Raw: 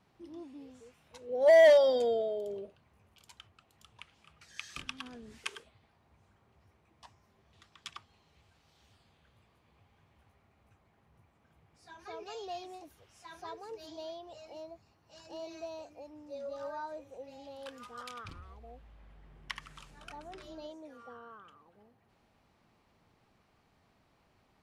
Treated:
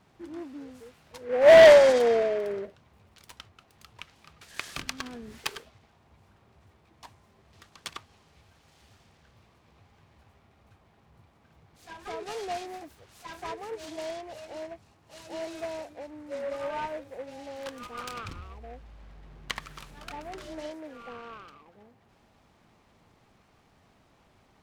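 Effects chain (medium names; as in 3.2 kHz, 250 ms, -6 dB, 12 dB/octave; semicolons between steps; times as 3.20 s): delay time shaken by noise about 1.2 kHz, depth 0.052 ms; trim +7 dB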